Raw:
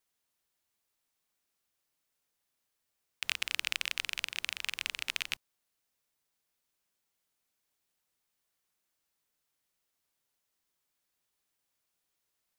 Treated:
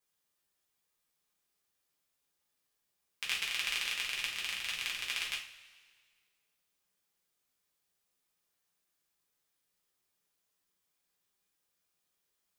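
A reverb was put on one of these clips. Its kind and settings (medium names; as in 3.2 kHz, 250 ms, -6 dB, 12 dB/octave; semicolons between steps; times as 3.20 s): two-slope reverb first 0.37 s, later 1.8 s, from -18 dB, DRR -4.5 dB; trim -5.5 dB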